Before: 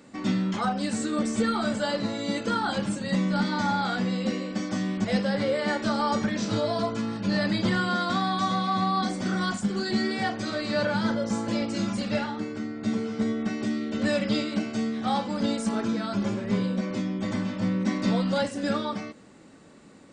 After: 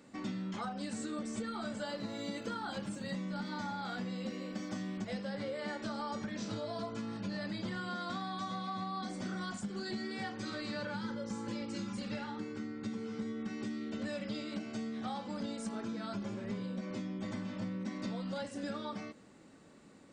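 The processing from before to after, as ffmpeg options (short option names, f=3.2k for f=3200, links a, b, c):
-filter_complex "[0:a]asettb=1/sr,asplit=3[a][b][c];[a]atrim=end=1.854[d];[b]atrim=start=1.85:end=5.08,asetpts=PTS-STARTPTS,afade=t=in:d=0.004:c=qsin,afade=t=out:st=3.226:d=0.004:c=qsin,aeval=exprs='sgn(val(0))*max(abs(val(0))-0.00112,0)':c=same[e];[c]atrim=start=5.076[f];[d][e]acrossfade=d=0.004:c1=hsin:c2=qsin[g];[g][f]acrossfade=d=0.004:c1=qsin:c2=hsin,asettb=1/sr,asplit=3[h][i][j];[h]atrim=end=10.054[k];[i]atrim=start=10.05:end=13.93,asetpts=PTS-STARTPTS,afade=t=in:d=0.004:c=qsin,afade=t=out:st=3.876:d=0.004:c=qsin,asuperstop=centerf=660:order=4:qfactor=4.4[l];[j]atrim=start=13.926[m];[k][l]acrossfade=d=0.004:c1=hsin:c2=qsin[n];[n][m]acrossfade=d=0.004:c1=qsin:c2=hsin,acompressor=threshold=-29dB:ratio=6,volume=-7dB"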